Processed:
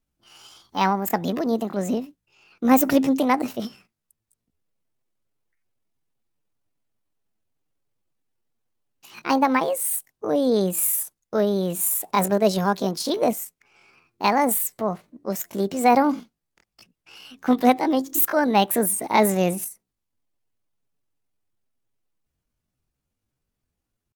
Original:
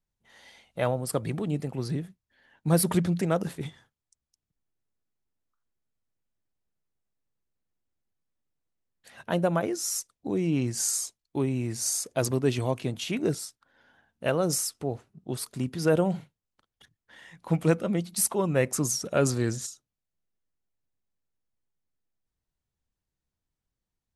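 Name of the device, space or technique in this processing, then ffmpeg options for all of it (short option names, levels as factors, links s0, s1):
chipmunk voice: -af "asetrate=68011,aresample=44100,atempo=0.64842,volume=2"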